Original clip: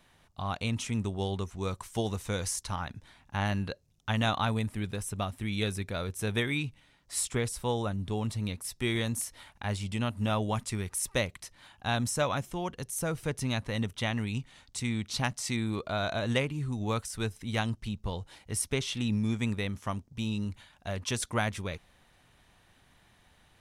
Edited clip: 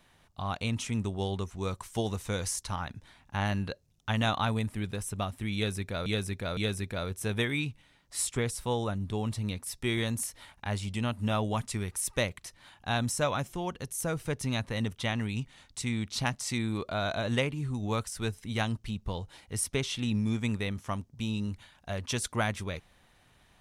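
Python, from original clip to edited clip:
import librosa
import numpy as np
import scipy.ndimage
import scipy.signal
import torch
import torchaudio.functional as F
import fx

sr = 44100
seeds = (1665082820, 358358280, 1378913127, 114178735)

y = fx.edit(x, sr, fx.repeat(start_s=5.55, length_s=0.51, count=3), tone=tone)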